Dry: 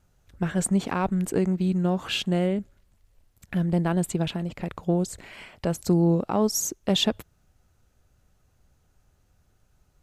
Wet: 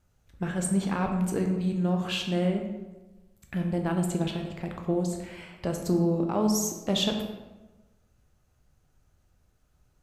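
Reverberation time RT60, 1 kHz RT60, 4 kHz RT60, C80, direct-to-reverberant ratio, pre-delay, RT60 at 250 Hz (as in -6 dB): 1.2 s, 1.1 s, 0.70 s, 7.0 dB, 2.5 dB, 10 ms, 1.3 s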